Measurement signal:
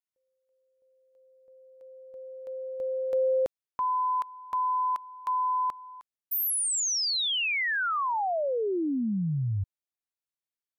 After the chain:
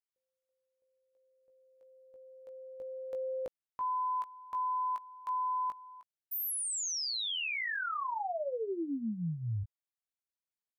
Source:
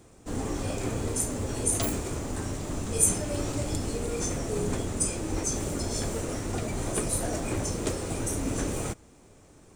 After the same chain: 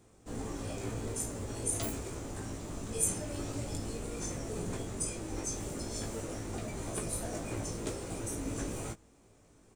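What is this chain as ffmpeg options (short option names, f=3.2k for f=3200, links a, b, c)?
-filter_complex "[0:a]asplit=2[a][b];[b]adelay=18,volume=-5.5dB[c];[a][c]amix=inputs=2:normalize=0,volume=-8.5dB"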